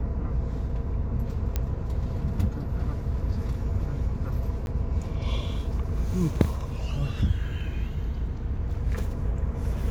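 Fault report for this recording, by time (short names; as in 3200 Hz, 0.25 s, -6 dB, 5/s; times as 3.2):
1.56 pop -13 dBFS
4.66–4.67 gap 11 ms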